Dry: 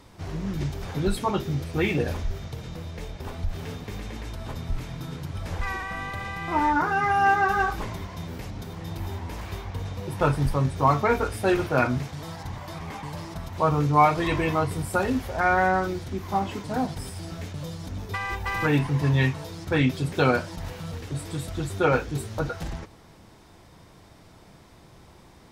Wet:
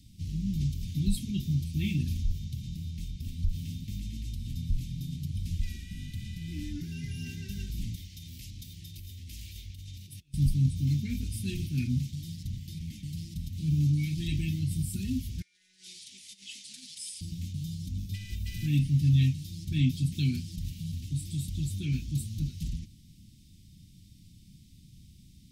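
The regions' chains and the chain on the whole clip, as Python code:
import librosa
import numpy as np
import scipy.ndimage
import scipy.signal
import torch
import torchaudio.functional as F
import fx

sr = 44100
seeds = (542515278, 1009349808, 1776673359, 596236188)

y = fx.chain(x, sr, fx.highpass(hz=110.0, slope=6),
    fx.over_compress(threshold_db=-37.0, ratio=-1.0),
    fx.peak_eq(hz=190.0, db=-14.0, octaves=1.8), at=(7.95, 10.34))
y = fx.chain(y, sr, fx.resample_bad(factor=2, down='none', up='filtered'),
    fx.highpass(hz=1300.0, slope=12),
    fx.over_compress(threshold_db=-38.0, ratio=-1.0), at=(15.42, 17.21))
y = scipy.signal.sosfilt(scipy.signal.cheby2(4, 60, [520.0, 1300.0], 'bandstop', fs=sr, output='sos'), y)
y = fx.peak_eq(y, sr, hz=3300.0, db=-4.0, octaves=2.9)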